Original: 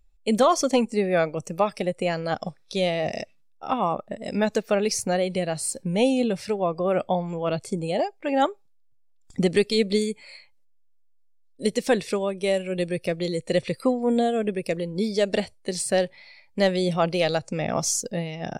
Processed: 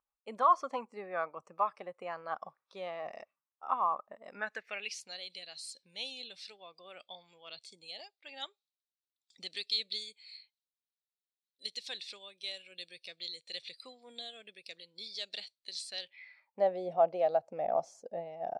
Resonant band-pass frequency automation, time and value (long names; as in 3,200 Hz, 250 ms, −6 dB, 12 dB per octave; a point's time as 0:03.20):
resonant band-pass, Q 4.5
0:04.25 1,100 Hz
0:05.10 3,900 Hz
0:16.00 3,900 Hz
0:16.63 700 Hz